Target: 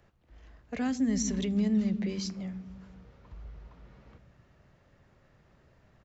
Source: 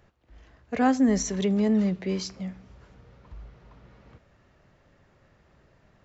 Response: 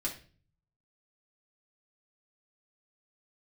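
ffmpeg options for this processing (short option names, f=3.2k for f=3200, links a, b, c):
-filter_complex "[0:a]acrossover=split=250|2000[a][b][c];[a]aecho=1:1:130|247|352.3|447.1|532.4:0.631|0.398|0.251|0.158|0.1[d];[b]acompressor=threshold=-36dB:ratio=6[e];[d][e][c]amix=inputs=3:normalize=0,volume=-3dB"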